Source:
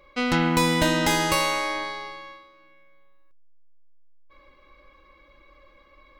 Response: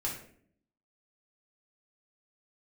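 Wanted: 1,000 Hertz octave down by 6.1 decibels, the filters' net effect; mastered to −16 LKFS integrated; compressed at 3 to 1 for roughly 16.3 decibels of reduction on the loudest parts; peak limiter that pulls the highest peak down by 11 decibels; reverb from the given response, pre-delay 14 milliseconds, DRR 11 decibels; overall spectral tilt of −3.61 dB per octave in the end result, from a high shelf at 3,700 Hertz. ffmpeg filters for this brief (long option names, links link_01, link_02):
-filter_complex "[0:a]equalizer=frequency=1000:width_type=o:gain=-7.5,highshelf=frequency=3700:gain=3,acompressor=threshold=-41dB:ratio=3,alimiter=level_in=7.5dB:limit=-24dB:level=0:latency=1,volume=-7.5dB,asplit=2[link_01][link_02];[1:a]atrim=start_sample=2205,adelay=14[link_03];[link_02][link_03]afir=irnorm=-1:irlink=0,volume=-14.5dB[link_04];[link_01][link_04]amix=inputs=2:normalize=0,volume=24.5dB"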